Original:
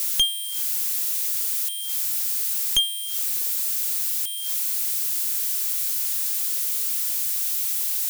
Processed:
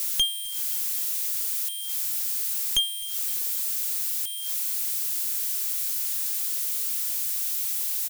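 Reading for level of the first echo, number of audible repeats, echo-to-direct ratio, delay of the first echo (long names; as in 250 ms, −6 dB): −21.0 dB, 2, −20.0 dB, 258 ms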